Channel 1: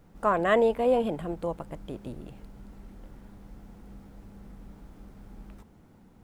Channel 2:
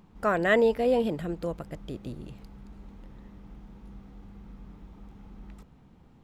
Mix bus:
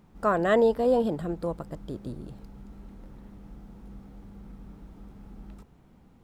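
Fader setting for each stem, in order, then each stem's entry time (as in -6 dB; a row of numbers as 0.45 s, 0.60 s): -5.0 dB, -3.0 dB; 0.00 s, 0.00 s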